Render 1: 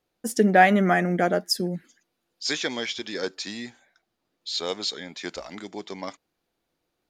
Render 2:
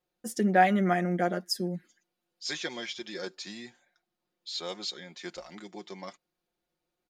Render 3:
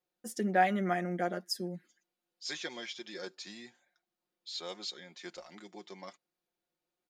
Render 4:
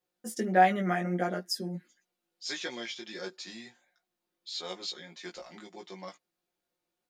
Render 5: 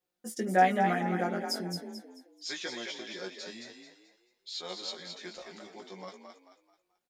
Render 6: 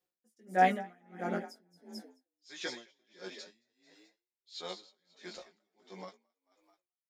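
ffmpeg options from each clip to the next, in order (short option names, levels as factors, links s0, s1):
-af "aecho=1:1:5.6:0.65,volume=0.376"
-af "lowshelf=f=110:g=-10,volume=0.596"
-af "flanger=delay=16:depth=2:speed=1.5,volume=2"
-filter_complex "[0:a]asplit=5[s0][s1][s2][s3][s4];[s1]adelay=218,afreqshift=42,volume=0.501[s5];[s2]adelay=436,afreqshift=84,volume=0.176[s6];[s3]adelay=654,afreqshift=126,volume=0.0617[s7];[s4]adelay=872,afreqshift=168,volume=0.0214[s8];[s0][s5][s6][s7][s8]amix=inputs=5:normalize=0,volume=0.841"
-af "aeval=exprs='val(0)*pow(10,-34*(0.5-0.5*cos(2*PI*1.5*n/s))/20)':c=same"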